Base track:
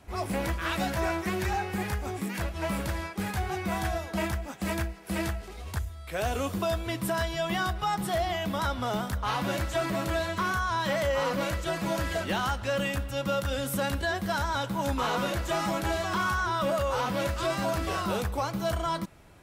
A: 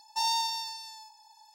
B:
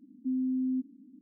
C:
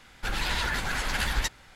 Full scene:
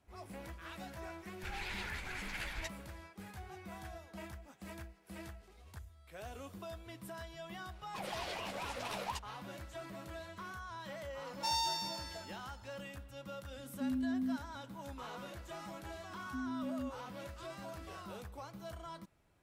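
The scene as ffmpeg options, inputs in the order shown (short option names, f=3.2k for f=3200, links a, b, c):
-filter_complex "[3:a]asplit=2[a][b];[2:a]asplit=2[c][d];[0:a]volume=-18dB[e];[a]equalizer=f=2.3k:t=o:w=0.45:g=10[f];[b]aeval=exprs='val(0)*sin(2*PI*800*n/s+800*0.35/4.2*sin(2*PI*4.2*n/s))':c=same[g];[c]highpass=260[h];[f]atrim=end=1.75,asetpts=PTS-STARTPTS,volume=-16.5dB,afade=t=in:d=0.004:c=hsin,afade=t=out:st=1.746:d=0.004:c=hsin,adelay=1200[i];[g]atrim=end=1.75,asetpts=PTS-STARTPTS,volume=-11.5dB,afade=t=in:d=0.004:c=hsin,afade=t=out:st=1.746:d=0.004:c=hsin,adelay=7710[j];[1:a]atrim=end=1.54,asetpts=PTS-STARTPTS,volume=-6dB,afade=t=in:d=0.004:c=hsin,afade=t=out:st=1.536:d=0.004:c=hsin,adelay=11270[k];[h]atrim=end=1.21,asetpts=PTS-STARTPTS,volume=-2.5dB,afade=t=in:d=0.004:c=hsin,afade=t=out:st=1.206:d=0.004:c=hsin,adelay=13550[l];[d]atrim=end=1.21,asetpts=PTS-STARTPTS,volume=-10.5dB,afade=t=in:d=0.004:c=hsin,afade=t=out:st=1.206:d=0.004:c=hsin,adelay=16080[m];[e][i][j][k][l][m]amix=inputs=6:normalize=0"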